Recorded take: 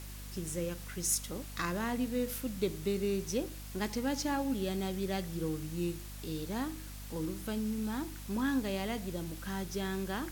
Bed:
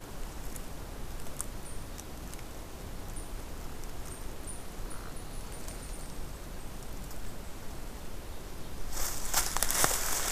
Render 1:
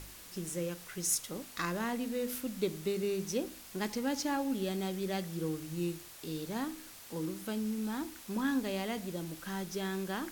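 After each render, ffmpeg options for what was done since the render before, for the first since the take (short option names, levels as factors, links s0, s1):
-af "bandreject=f=50:t=h:w=4,bandreject=f=100:t=h:w=4,bandreject=f=150:t=h:w=4,bandreject=f=200:t=h:w=4,bandreject=f=250:t=h:w=4"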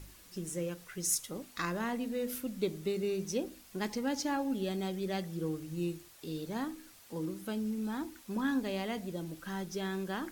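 -af "afftdn=nr=7:nf=-51"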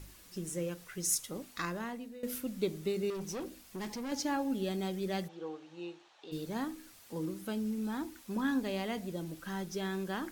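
-filter_complex "[0:a]asettb=1/sr,asplit=3[s0][s1][s2];[s0]atrim=end=3.104[s3];[s1]atrim=start=3.1:end=4.12,asetpts=PTS-STARTPTS,afade=t=in:d=0.004:c=qsin,afade=t=out:st=1.016:d=0.004:c=qsin,asoftclip=type=hard:threshold=0.015[s4];[s2]atrim=start=4.116[s5];[s3][s4]acrossfade=d=0.004:c1=hsin:c2=qsin[s6];[s6][s5]acrossfade=d=0.004:c1=qsin:c2=hsin,asplit=3[s7][s8][s9];[s7]afade=t=out:st=5.27:d=0.02[s10];[s8]highpass=490,equalizer=f=820:t=q:w=4:g=9,equalizer=f=2100:t=q:w=4:g=-4,equalizer=f=4900:t=q:w=4:g=-8,lowpass=f=5000:w=0.5412,lowpass=f=5000:w=1.3066,afade=t=in:st=5.27:d=0.02,afade=t=out:st=6.31:d=0.02[s11];[s9]afade=t=in:st=6.31:d=0.02[s12];[s10][s11][s12]amix=inputs=3:normalize=0,asplit=2[s13][s14];[s13]atrim=end=2.23,asetpts=PTS-STARTPTS,afade=t=out:st=1.5:d=0.73:silence=0.158489[s15];[s14]atrim=start=2.23,asetpts=PTS-STARTPTS,afade=t=in:d=0.004:c=hsin:silence=0.158489[s16];[s15][s16]concat=n=2:v=0:a=1"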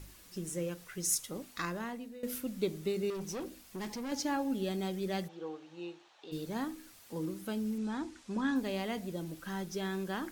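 -filter_complex "[0:a]asettb=1/sr,asplit=3[s0][s1][s2];[s0]atrim=end=7.784[s3];[s1]atrim=start=7.78:end=8.56,asetpts=PTS-STARTPTS,afade=t=in:d=0.004:c=qsin,afade=t=out:st=0.776:d=0.004:c=qsin,lowpass=f=8300:w=0.5412,lowpass=f=8300:w=1.3066[s4];[s2]atrim=start=8.556[s5];[s3][s4]acrossfade=d=0.004:c1=hsin:c2=qsin[s6];[s6][s5]acrossfade=d=0.004:c1=qsin:c2=hsin"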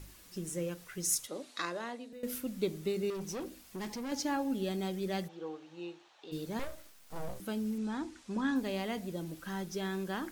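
-filter_complex "[0:a]asettb=1/sr,asplit=3[s0][s1][s2];[s0]atrim=end=1.274[s3];[s1]atrim=start=1.27:end=2.13,asetpts=PTS-STARTPTS,afade=t=in:d=0.004:c=qsin,afade=t=out:st=0.856:d=0.004:c=qsin,highpass=f=200:w=0.5412,highpass=f=200:w=1.3066,equalizer=f=200:t=q:w=4:g=-9,equalizer=f=590:t=q:w=4:g=6,equalizer=f=3900:t=q:w=4:g=7,lowpass=f=9900:w=0.5412,lowpass=f=9900:w=1.3066[s4];[s2]atrim=start=2.126[s5];[s3][s4]acrossfade=d=0.004:c1=hsin:c2=qsin[s6];[s6][s5]acrossfade=d=0.004:c1=qsin:c2=hsin,asettb=1/sr,asplit=3[s7][s8][s9];[s7]atrim=end=6.594[s10];[s8]atrim=start=6.59:end=7.4,asetpts=PTS-STARTPTS,afade=t=in:d=0.004:c=qsin,afade=t=out:st=0.806:d=0.004:c=qsin,aeval=exprs='abs(val(0))':c=same[s11];[s9]atrim=start=7.396[s12];[s10][s11]acrossfade=d=0.004:c1=hsin:c2=qsin[s13];[s13][s12]acrossfade=d=0.004:c1=qsin:c2=hsin"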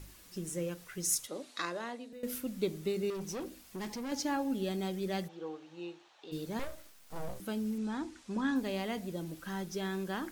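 -af anull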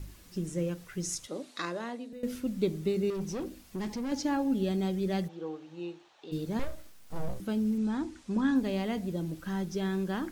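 -filter_complex "[0:a]acrossover=split=8000[s0][s1];[s1]acompressor=threshold=0.00126:ratio=4:attack=1:release=60[s2];[s0][s2]amix=inputs=2:normalize=0,lowshelf=f=330:g=9"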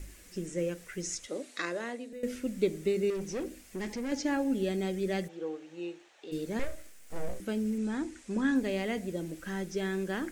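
-filter_complex "[0:a]equalizer=f=125:t=o:w=1:g=-11,equalizer=f=500:t=o:w=1:g=4,equalizer=f=1000:t=o:w=1:g=-6,equalizer=f=2000:t=o:w=1:g=7,equalizer=f=4000:t=o:w=1:g=-4,equalizer=f=8000:t=o:w=1:g=8,acrossover=split=6300[s0][s1];[s1]acompressor=threshold=0.002:ratio=4:attack=1:release=60[s2];[s0][s2]amix=inputs=2:normalize=0"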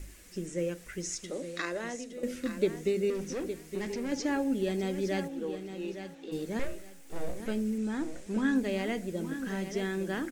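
-af "aecho=1:1:864|1728|2592:0.316|0.0759|0.0182"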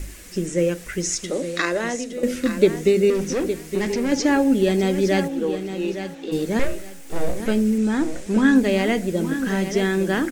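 -af "volume=3.98"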